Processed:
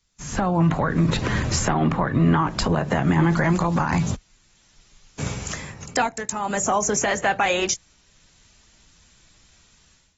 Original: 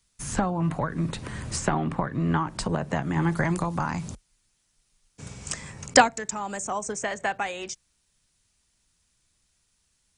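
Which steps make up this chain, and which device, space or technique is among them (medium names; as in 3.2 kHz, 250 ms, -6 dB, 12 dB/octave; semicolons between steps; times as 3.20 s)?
low-bitrate web radio (level rider gain up to 16 dB; peak limiter -11.5 dBFS, peak gain reduction 11 dB; AAC 24 kbps 44.1 kHz)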